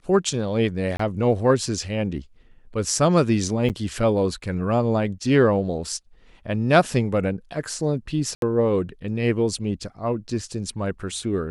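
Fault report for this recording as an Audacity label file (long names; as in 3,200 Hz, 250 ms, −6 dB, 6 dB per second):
0.970000	0.990000	drop-out 24 ms
3.690000	3.700000	drop-out 8.2 ms
8.350000	8.420000	drop-out 72 ms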